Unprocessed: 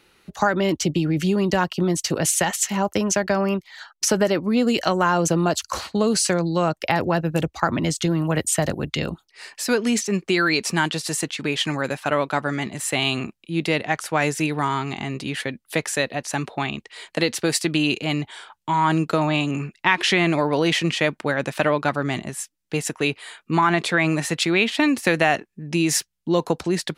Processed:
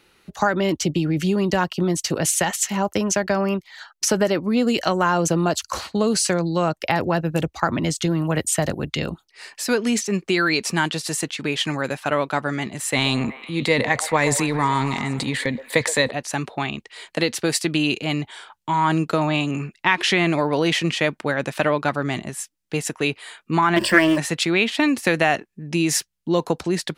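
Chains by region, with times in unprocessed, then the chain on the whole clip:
12.93–16.11 s: rippled EQ curve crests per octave 1, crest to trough 8 dB + transient shaper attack +3 dB, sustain +9 dB + repeats whose band climbs or falls 123 ms, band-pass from 650 Hz, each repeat 0.7 oct, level -9 dB
23.76–24.18 s: jump at every zero crossing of -30.5 dBFS + rippled EQ curve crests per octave 1.3, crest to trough 17 dB + loudspeaker Doppler distortion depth 0.15 ms
whole clip: none

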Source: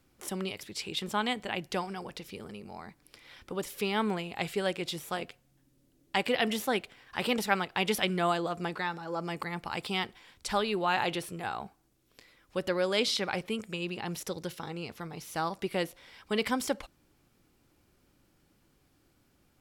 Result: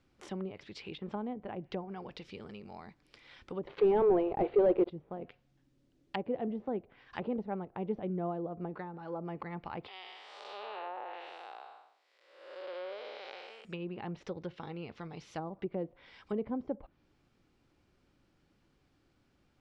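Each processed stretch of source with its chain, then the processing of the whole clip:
3.67–4.90 s: brick-wall FIR band-pass 320–4800 Hz + waveshaping leveller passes 5
9.88–13.65 s: spectral blur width 378 ms + high-pass 510 Hz 24 dB/octave
whole clip: low-pass that closes with the level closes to 590 Hz, closed at -29 dBFS; low-pass 4.9 kHz 12 dB/octave; dynamic bell 1.5 kHz, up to -4 dB, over -50 dBFS, Q 1.3; trim -3 dB

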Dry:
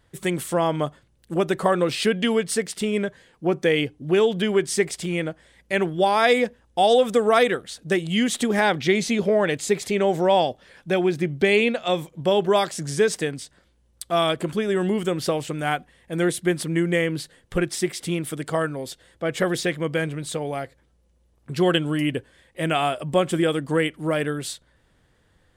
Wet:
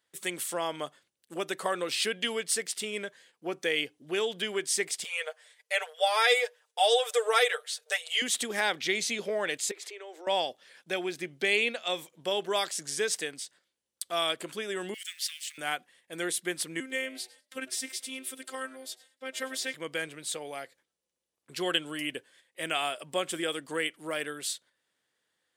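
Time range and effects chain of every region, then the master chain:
5.04–8.22 s: brick-wall FIR high-pass 420 Hz + comb 6.6 ms, depth 89%
9.71–10.27 s: treble shelf 8.2 kHz -9.5 dB + compression 2.5:1, threshold -32 dBFS + rippled Chebyshev high-pass 310 Hz, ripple 3 dB
14.94–15.58 s: companding laws mixed up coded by mu + elliptic high-pass 1.8 kHz, stop band 60 dB
16.80–19.74 s: robot voice 262 Hz + peaking EQ 700 Hz -5 dB 0.71 oct + frequency-shifting echo 101 ms, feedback 34%, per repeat +110 Hz, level -21 dB
whole clip: gate -51 dBFS, range -7 dB; high-pass 510 Hz 12 dB/octave; peaking EQ 770 Hz -9.5 dB 2.7 oct

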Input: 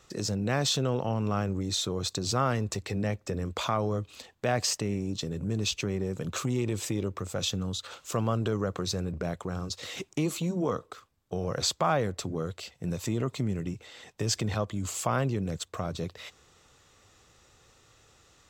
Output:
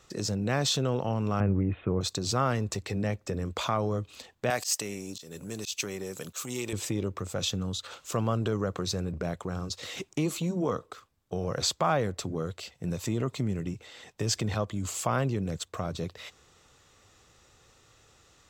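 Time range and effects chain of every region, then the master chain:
1.40–2.01 s: steep low-pass 2.7 kHz 72 dB/octave + bass shelf 360 Hz +6.5 dB
4.50–6.73 s: RIAA curve recording + slow attack 186 ms
whole clip: none

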